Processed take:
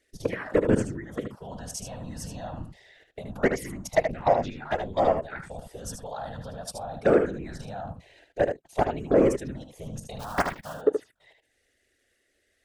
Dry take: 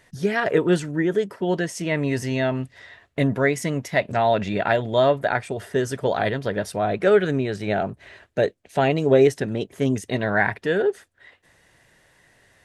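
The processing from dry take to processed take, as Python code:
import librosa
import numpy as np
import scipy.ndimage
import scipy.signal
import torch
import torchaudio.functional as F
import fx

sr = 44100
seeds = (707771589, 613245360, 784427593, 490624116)

y = fx.cycle_switch(x, sr, every=2, mode='inverted', at=(10.19, 10.72), fade=0.02)
y = fx.highpass(y, sr, hz=53.0, slope=6)
y = fx.level_steps(y, sr, step_db=18)
y = 10.0 ** (-14.5 / 20.0) * np.tanh(y / 10.0 ** (-14.5 / 20.0))
y = fx.whisperise(y, sr, seeds[0])
y = fx.env_phaser(y, sr, low_hz=160.0, high_hz=3800.0, full_db=-21.0)
y = y + 10.0 ** (-7.0 / 20.0) * np.pad(y, (int(76 * sr / 1000.0), 0))[:len(y)]
y = fx.ensemble(y, sr, at=(4.5, 5.32))
y = y * librosa.db_to_amplitude(2.5)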